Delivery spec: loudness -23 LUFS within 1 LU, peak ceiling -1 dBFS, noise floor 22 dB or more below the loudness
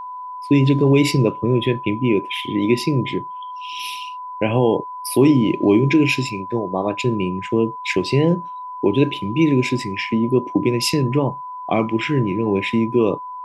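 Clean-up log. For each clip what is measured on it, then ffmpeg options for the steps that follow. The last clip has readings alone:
steady tone 1 kHz; tone level -29 dBFS; loudness -19.0 LUFS; peak level -3.5 dBFS; loudness target -23.0 LUFS
-> -af "bandreject=f=1000:w=30"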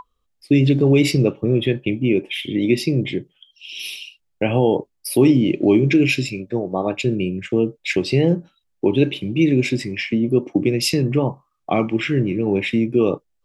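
steady tone not found; loudness -19.5 LUFS; peak level -4.0 dBFS; loudness target -23.0 LUFS
-> -af "volume=0.668"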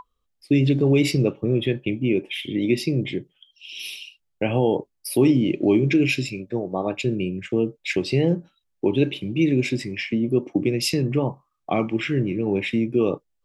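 loudness -23.0 LUFS; peak level -7.5 dBFS; noise floor -74 dBFS

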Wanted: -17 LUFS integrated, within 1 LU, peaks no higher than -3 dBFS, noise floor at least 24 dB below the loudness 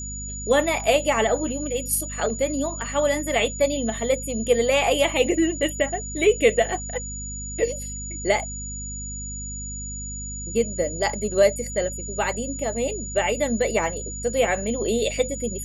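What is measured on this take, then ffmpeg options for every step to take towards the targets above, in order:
hum 50 Hz; highest harmonic 250 Hz; hum level -33 dBFS; steady tone 6.9 kHz; tone level -33 dBFS; loudness -24.0 LUFS; peak level -6.0 dBFS; loudness target -17.0 LUFS
-> -af "bandreject=f=50:t=h:w=6,bandreject=f=100:t=h:w=6,bandreject=f=150:t=h:w=6,bandreject=f=200:t=h:w=6,bandreject=f=250:t=h:w=6"
-af "bandreject=f=6900:w=30"
-af "volume=2.24,alimiter=limit=0.708:level=0:latency=1"

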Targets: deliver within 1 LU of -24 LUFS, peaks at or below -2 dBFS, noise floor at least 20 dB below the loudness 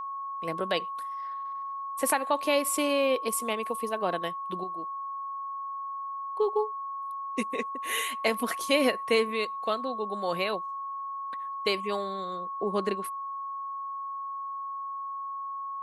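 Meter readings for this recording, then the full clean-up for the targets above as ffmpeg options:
steady tone 1.1 kHz; tone level -33 dBFS; loudness -30.5 LUFS; peak level -11.0 dBFS; loudness target -24.0 LUFS
-> -af "bandreject=f=1100:w=30"
-af "volume=2.11"

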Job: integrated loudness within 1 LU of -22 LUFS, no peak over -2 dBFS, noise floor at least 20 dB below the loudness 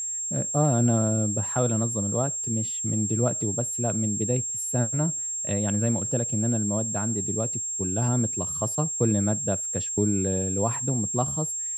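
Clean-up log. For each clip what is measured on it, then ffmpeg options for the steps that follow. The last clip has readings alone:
steady tone 7.5 kHz; tone level -28 dBFS; loudness -25.0 LUFS; peak level -9.5 dBFS; loudness target -22.0 LUFS
-> -af "bandreject=f=7500:w=30"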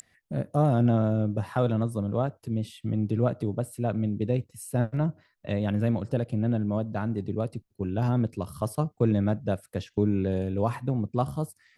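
steady tone not found; loudness -28.0 LUFS; peak level -10.5 dBFS; loudness target -22.0 LUFS
-> -af "volume=2"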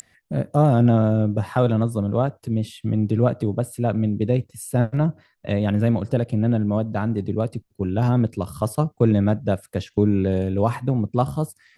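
loudness -22.0 LUFS; peak level -4.5 dBFS; noise floor -64 dBFS

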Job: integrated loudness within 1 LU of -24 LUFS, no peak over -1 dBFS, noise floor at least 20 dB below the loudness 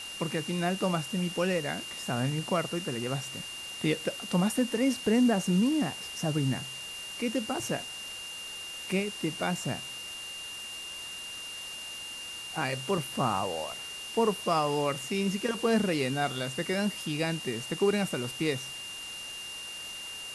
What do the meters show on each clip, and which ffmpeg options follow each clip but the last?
steady tone 2.8 kHz; tone level -39 dBFS; noise floor -41 dBFS; noise floor target -51 dBFS; loudness -31.0 LUFS; peak level -15.0 dBFS; loudness target -24.0 LUFS
-> -af "bandreject=f=2800:w=30"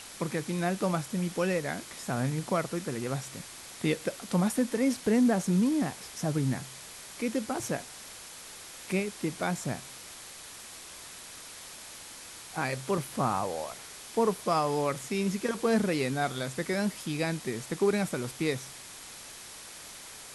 steady tone not found; noise floor -46 dBFS; noise floor target -51 dBFS
-> -af "afftdn=nr=6:nf=-46"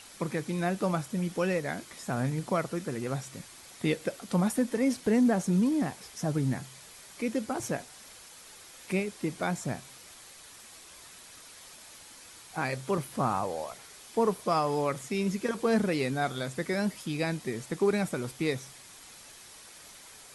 noise floor -51 dBFS; loudness -30.5 LUFS; peak level -15.5 dBFS; loudness target -24.0 LUFS
-> -af "volume=2.11"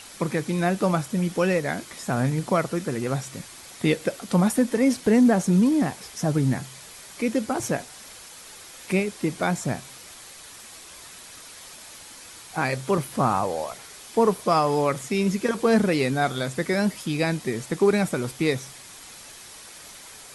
loudness -24.0 LUFS; peak level -9.0 dBFS; noise floor -44 dBFS

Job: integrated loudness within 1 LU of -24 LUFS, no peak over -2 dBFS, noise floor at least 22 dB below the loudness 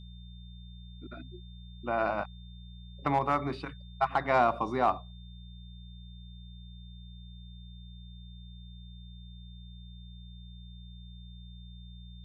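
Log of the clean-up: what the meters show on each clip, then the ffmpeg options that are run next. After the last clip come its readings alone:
hum 60 Hz; highest harmonic 180 Hz; hum level -45 dBFS; steady tone 3.6 kHz; tone level -57 dBFS; loudness -30.5 LUFS; peak level -14.0 dBFS; loudness target -24.0 LUFS
-> -af "bandreject=f=60:t=h:w=4,bandreject=f=120:t=h:w=4,bandreject=f=180:t=h:w=4"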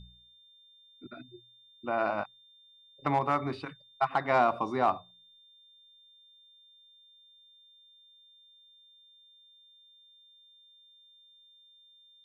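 hum not found; steady tone 3.6 kHz; tone level -57 dBFS
-> -af "bandreject=f=3600:w=30"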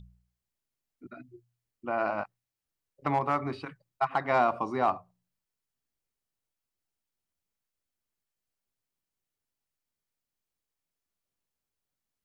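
steady tone not found; loudness -30.0 LUFS; peak level -14.0 dBFS; loudness target -24.0 LUFS
-> -af "volume=2"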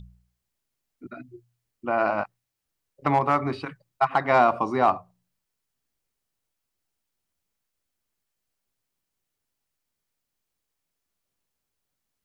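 loudness -24.0 LUFS; peak level -8.0 dBFS; noise floor -82 dBFS

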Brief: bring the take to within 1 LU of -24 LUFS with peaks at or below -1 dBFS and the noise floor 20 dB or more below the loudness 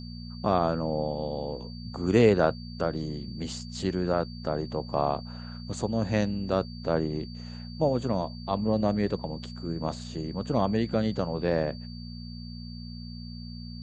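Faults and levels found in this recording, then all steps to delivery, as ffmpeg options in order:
hum 60 Hz; highest harmonic 240 Hz; hum level -37 dBFS; steady tone 4.6 kHz; tone level -47 dBFS; loudness -29.0 LUFS; peak level -7.5 dBFS; loudness target -24.0 LUFS
-> -af "bandreject=f=60:t=h:w=4,bandreject=f=120:t=h:w=4,bandreject=f=180:t=h:w=4,bandreject=f=240:t=h:w=4"
-af "bandreject=f=4600:w=30"
-af "volume=1.78"

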